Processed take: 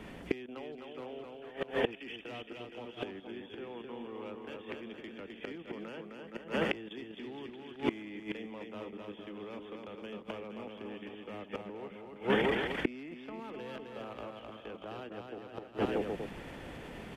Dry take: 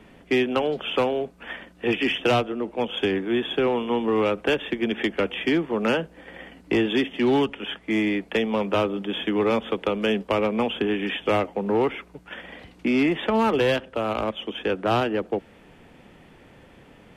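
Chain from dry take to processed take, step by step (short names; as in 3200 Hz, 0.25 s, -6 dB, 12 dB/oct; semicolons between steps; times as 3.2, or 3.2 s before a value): level quantiser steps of 14 dB; bouncing-ball echo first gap 0.26 s, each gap 0.8×, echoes 5; flipped gate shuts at -24 dBFS, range -25 dB; gain +8.5 dB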